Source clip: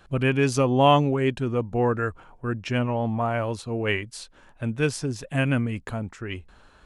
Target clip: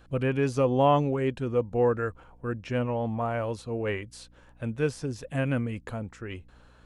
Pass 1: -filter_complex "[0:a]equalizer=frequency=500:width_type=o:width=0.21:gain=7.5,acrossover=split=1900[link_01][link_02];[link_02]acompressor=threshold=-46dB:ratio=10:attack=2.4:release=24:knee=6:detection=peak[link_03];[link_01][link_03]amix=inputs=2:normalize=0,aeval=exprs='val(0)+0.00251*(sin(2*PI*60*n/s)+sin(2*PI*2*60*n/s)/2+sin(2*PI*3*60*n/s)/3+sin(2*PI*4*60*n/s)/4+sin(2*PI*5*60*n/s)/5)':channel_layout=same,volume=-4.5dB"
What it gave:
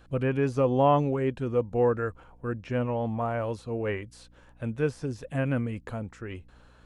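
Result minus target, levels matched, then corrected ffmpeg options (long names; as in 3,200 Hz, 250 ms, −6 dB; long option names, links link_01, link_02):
downward compressor: peak gain reduction +7 dB
-filter_complex "[0:a]equalizer=frequency=500:width_type=o:width=0.21:gain=7.5,acrossover=split=1900[link_01][link_02];[link_02]acompressor=threshold=-38dB:ratio=10:attack=2.4:release=24:knee=6:detection=peak[link_03];[link_01][link_03]amix=inputs=2:normalize=0,aeval=exprs='val(0)+0.00251*(sin(2*PI*60*n/s)+sin(2*PI*2*60*n/s)/2+sin(2*PI*3*60*n/s)/3+sin(2*PI*4*60*n/s)/4+sin(2*PI*5*60*n/s)/5)':channel_layout=same,volume=-4.5dB"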